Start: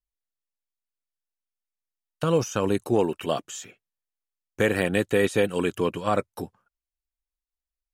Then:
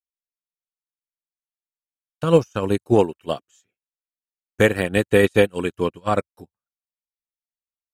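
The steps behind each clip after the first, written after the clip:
parametric band 62 Hz +13 dB 0.77 octaves
expander for the loud parts 2.5 to 1, over −42 dBFS
level +8.5 dB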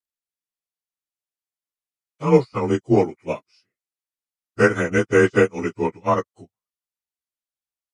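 partials spread apart or drawn together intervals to 91%
dynamic equaliser 1,200 Hz, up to +6 dB, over −38 dBFS, Q 1.8
level +1 dB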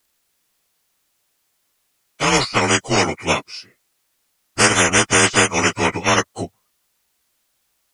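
every bin compressed towards the loudest bin 4 to 1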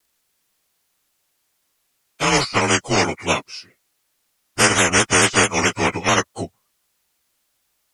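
pitch modulation by a square or saw wave saw down 4.6 Hz, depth 100 cents
level −1 dB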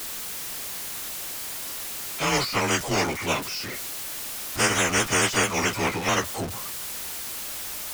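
converter with a step at zero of −19 dBFS
level −8.5 dB

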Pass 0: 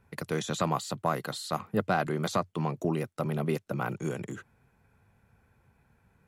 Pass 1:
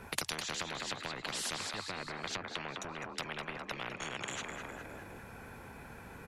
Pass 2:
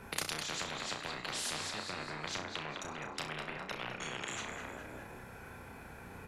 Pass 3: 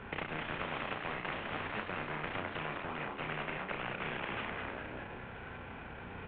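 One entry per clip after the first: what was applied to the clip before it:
treble cut that deepens with the level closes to 720 Hz, closed at −24.5 dBFS; echo with shifted repeats 205 ms, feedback 42%, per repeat +38 Hz, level −12.5 dB; every bin compressed towards the loudest bin 10 to 1
flutter between parallel walls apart 5.6 metres, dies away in 0.34 s; level −1.5 dB
variable-slope delta modulation 16 kbit/s; level +3.5 dB

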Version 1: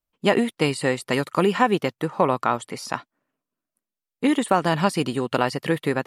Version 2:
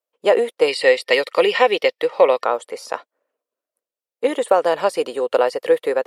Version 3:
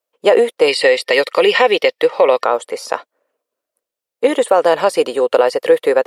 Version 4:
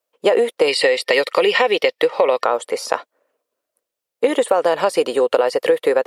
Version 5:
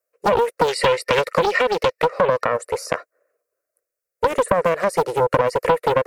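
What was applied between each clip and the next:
high-pass with resonance 500 Hz, resonance Q 4.9; gain on a spectral selection 0:00.68–0:02.44, 1,800–5,700 Hz +11 dB; level −2 dB
boost into a limiter +7.5 dB; level −1 dB
downward compressor 4 to 1, threshold −14 dBFS, peak gain reduction 7 dB; level +1.5 dB
phaser with its sweep stopped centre 890 Hz, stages 6; highs frequency-modulated by the lows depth 0.67 ms

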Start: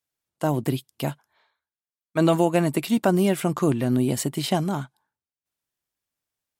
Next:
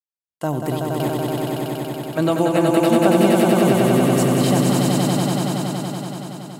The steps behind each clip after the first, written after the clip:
noise gate with hold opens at −54 dBFS
echo that builds up and dies away 94 ms, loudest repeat 5, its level −3.5 dB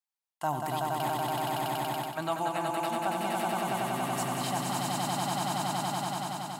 reversed playback
downward compressor 6 to 1, threshold −24 dBFS, peak gain reduction 13.5 dB
reversed playback
low shelf with overshoot 630 Hz −8 dB, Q 3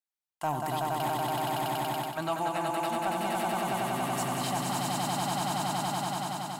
leveller curve on the samples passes 1
level −2.5 dB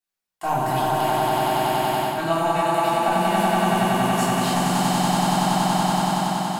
rectangular room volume 440 cubic metres, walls mixed, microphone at 3.4 metres

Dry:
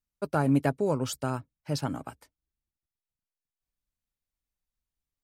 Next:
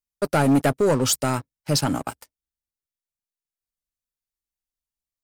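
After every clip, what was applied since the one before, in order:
bass and treble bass −3 dB, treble +6 dB
leveller curve on the samples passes 3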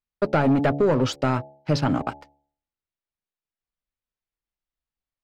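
hum removal 71.27 Hz, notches 12
downward compressor, threshold −19 dBFS, peak gain reduction 4.5 dB
high-frequency loss of the air 230 metres
level +3.5 dB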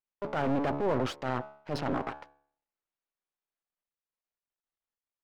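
half-wave rectification
mid-hump overdrive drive 19 dB, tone 1,000 Hz, clips at −11 dBFS
transient designer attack −7 dB, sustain +1 dB
level −5.5 dB

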